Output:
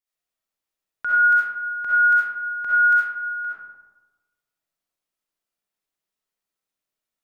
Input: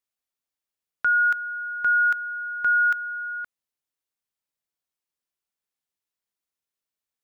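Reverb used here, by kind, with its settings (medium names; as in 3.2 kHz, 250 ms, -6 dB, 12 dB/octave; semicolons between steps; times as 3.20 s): algorithmic reverb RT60 1.2 s, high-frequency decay 0.4×, pre-delay 25 ms, DRR -8.5 dB; trim -5 dB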